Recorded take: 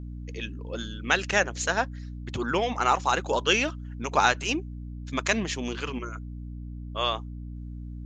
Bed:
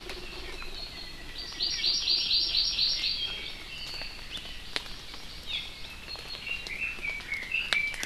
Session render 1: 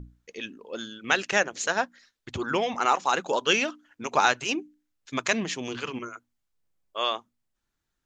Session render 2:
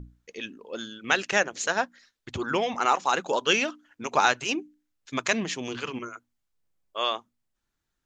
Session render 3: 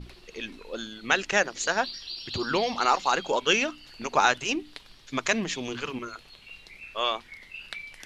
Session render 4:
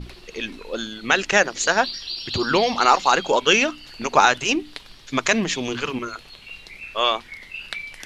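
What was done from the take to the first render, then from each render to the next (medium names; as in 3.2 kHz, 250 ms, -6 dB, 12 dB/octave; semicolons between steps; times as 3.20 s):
hum notches 60/120/180/240/300 Hz
no audible change
add bed -11.5 dB
trim +7 dB; peak limiter -2 dBFS, peak gain reduction 3 dB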